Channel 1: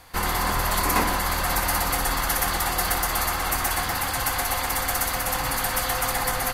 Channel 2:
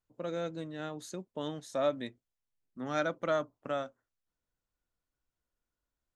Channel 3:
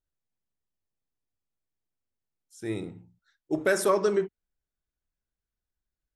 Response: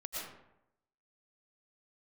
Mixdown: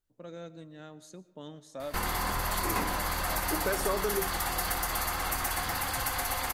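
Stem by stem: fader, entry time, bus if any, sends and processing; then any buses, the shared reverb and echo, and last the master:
+0.5 dB, 1.80 s, no send, none
-9.0 dB, 0.00 s, send -15.5 dB, tone controls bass +4 dB, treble +3 dB
+2.0 dB, 0.00 s, no send, none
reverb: on, RT60 0.85 s, pre-delay 75 ms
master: compression 2:1, threshold -34 dBFS, peak gain reduction 10.5 dB

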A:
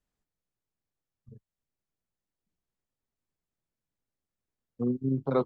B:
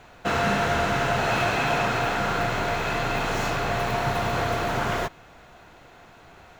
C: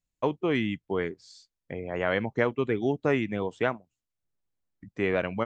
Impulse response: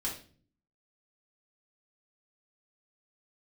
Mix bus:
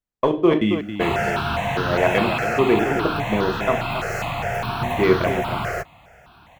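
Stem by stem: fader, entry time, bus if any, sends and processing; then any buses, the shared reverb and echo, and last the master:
-6.0 dB, 0.00 s, no send, no echo send, none
+3.0 dB, 0.75 s, no send, no echo send, high-pass 42 Hz; stepped phaser 4.9 Hz 970–2200 Hz
-0.5 dB, 0.00 s, send -5 dB, echo send -6.5 dB, waveshaping leveller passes 1; trance gate "...xxxx.xx" 196 bpm -60 dB; small resonant body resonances 360/620/1100/3400 Hz, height 9 dB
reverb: on, RT60 0.45 s, pre-delay 3 ms
echo: delay 273 ms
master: none

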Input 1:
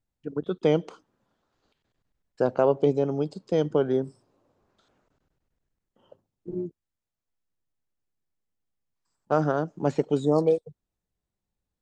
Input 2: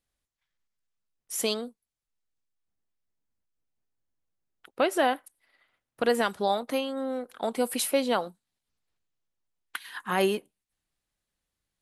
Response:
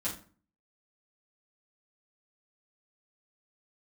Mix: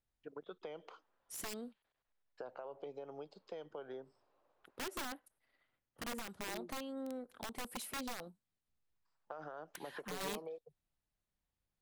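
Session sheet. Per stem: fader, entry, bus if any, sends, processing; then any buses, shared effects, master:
-3.5 dB, 0.00 s, no send, three-band isolator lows -19 dB, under 500 Hz, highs -21 dB, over 4.5 kHz; peak limiter -24.5 dBFS, peak gain reduction 11 dB; compression 4:1, threshold -42 dBFS, peak gain reduction 11.5 dB
-12.5 dB, 0.00 s, no send, bass shelf 400 Hz +11 dB; compression 2:1, threshold -31 dBFS, peak gain reduction 9.5 dB; integer overflow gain 23.5 dB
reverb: none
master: none

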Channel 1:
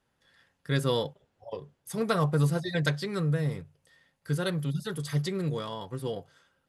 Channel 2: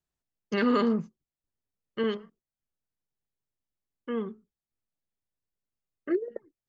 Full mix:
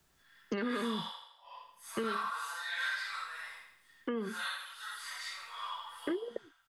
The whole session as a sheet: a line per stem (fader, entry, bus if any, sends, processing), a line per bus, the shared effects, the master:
+2.5 dB, 0.00 s, no send, echo send -7 dB, phase randomisation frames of 200 ms; steep high-pass 970 Hz 36 dB/octave; treble shelf 3 kHz -8 dB
-2.5 dB, 0.00 s, no send, no echo send, three bands compressed up and down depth 70%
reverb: none
echo: feedback delay 81 ms, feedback 49%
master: compression, threshold -31 dBFS, peak gain reduction 6.5 dB

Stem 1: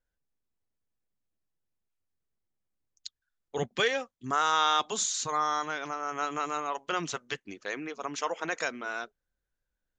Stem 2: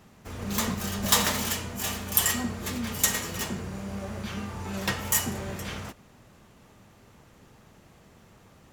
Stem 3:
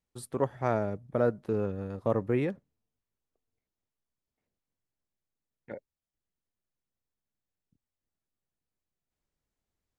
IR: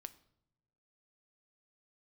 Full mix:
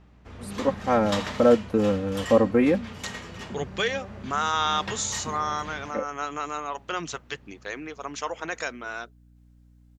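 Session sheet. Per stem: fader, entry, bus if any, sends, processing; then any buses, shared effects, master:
+0.5 dB, 0.00 s, no send, none
-5.0 dB, 0.00 s, no send, low-pass 3.9 kHz 12 dB/octave
-2.5 dB, 0.25 s, no send, comb 3.8 ms, depth 82%; level rider gain up to 10 dB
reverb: none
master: hum 60 Hz, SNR 28 dB

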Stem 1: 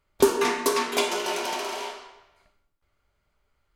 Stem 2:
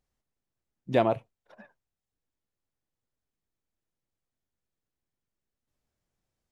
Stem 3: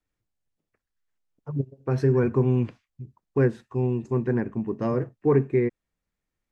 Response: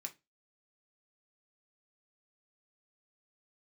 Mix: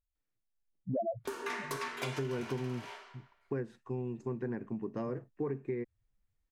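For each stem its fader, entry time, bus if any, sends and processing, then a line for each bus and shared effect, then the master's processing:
-16.0 dB, 1.05 s, no send, peaking EQ 1.7 kHz +10 dB 1.4 oct
-0.5 dB, 0.00 s, no send, level rider gain up to 14 dB; loudest bins only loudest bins 2
-6.5 dB, 0.15 s, no send, high-pass 120 Hz; auto duck -15 dB, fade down 2.00 s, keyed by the second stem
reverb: none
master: compression 5:1, threshold -33 dBFS, peak gain reduction 15 dB

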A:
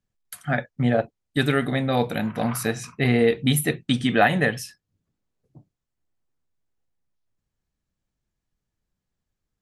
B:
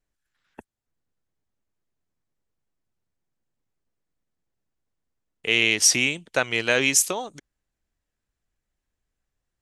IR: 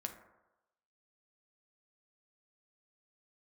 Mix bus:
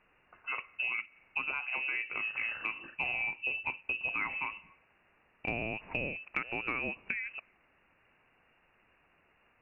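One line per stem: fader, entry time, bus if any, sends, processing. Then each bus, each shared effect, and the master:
-5.5 dB, 0.00 s, send -19 dB, auto duck -18 dB, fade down 1.30 s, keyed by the second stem
-5.0 dB, 0.00 s, send -19.5 dB, bass shelf 340 Hz +10 dB; bit crusher 9-bit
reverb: on, RT60 1.0 s, pre-delay 5 ms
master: word length cut 10-bit, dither triangular; frequency inversion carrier 2.8 kHz; compression 6:1, threshold -32 dBFS, peak gain reduction 13 dB

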